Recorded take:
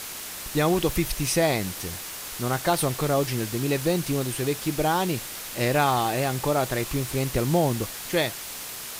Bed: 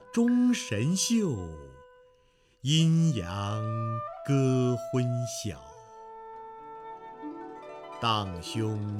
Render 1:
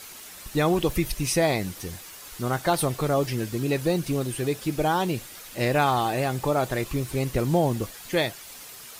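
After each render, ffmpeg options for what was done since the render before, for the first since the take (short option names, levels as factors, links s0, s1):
-af "afftdn=nr=9:nf=-37"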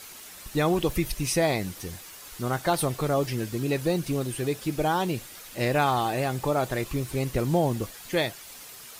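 -af "volume=0.841"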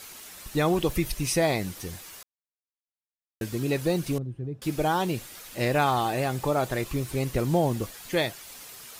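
-filter_complex "[0:a]asettb=1/sr,asplit=3[s0][s1][s2];[s0]atrim=end=4.184[s3];[s1]atrim=start=4.18:end=4.62,asetpts=PTS-STARTPTS,afade=t=in:d=0.004:c=qsin,afade=t=out:st=0.436:d=0.004:c=qsin,bandpass=f=120:t=q:w=1.1[s4];[s2]atrim=start=4.616[s5];[s3][s4]acrossfade=d=0.004:c1=hsin:c2=qsin[s6];[s6][s5]acrossfade=d=0.004:c1=qsin:c2=hsin,asplit=3[s7][s8][s9];[s7]atrim=end=2.23,asetpts=PTS-STARTPTS,afade=t=out:st=2.226:d=0.004:c=hsin[s10];[s8]atrim=start=2.23:end=3.41,asetpts=PTS-STARTPTS,volume=0[s11];[s9]atrim=start=3.41,asetpts=PTS-STARTPTS,afade=t=in:d=0.004:c=hsin[s12];[s10][s11][s12]concat=n=3:v=0:a=1"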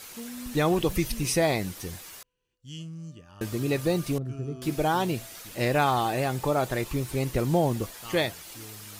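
-filter_complex "[1:a]volume=0.15[s0];[0:a][s0]amix=inputs=2:normalize=0"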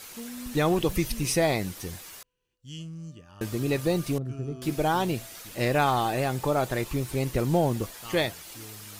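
-af "aeval=exprs='0.266*(cos(1*acos(clip(val(0)/0.266,-1,1)))-cos(1*PI/2))+0.00376*(cos(8*acos(clip(val(0)/0.266,-1,1)))-cos(8*PI/2))':c=same"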